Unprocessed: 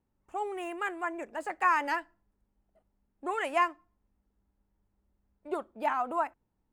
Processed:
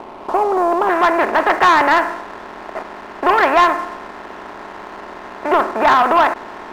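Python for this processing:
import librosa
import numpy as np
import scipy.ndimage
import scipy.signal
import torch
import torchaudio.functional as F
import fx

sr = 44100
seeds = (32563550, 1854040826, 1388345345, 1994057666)

y = fx.bin_compress(x, sr, power=0.4)
y = fx.lowpass(y, sr, hz=fx.steps((0.0, 1100.0), (0.89, 2400.0)), slope=24)
y = fx.leveller(y, sr, passes=2)
y = F.gain(torch.from_numpy(y), 7.0).numpy()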